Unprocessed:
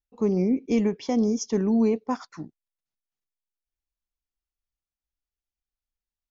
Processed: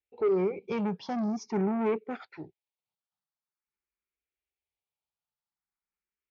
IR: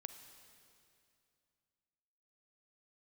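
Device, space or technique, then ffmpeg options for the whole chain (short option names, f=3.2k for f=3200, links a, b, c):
barber-pole phaser into a guitar amplifier: -filter_complex "[0:a]asplit=2[a][b];[b]afreqshift=0.46[c];[a][c]amix=inputs=2:normalize=1,asoftclip=type=tanh:threshold=-27dB,highpass=86,equalizer=f=180:t=q:w=4:g=4,equalizer=f=270:t=q:w=4:g=-7,equalizer=f=390:t=q:w=4:g=8,equalizer=f=860:t=q:w=4:g=7,equalizer=f=1.3k:t=q:w=4:g=4,equalizer=f=2.3k:t=q:w=4:g=8,lowpass=f=4.4k:w=0.5412,lowpass=f=4.4k:w=1.3066"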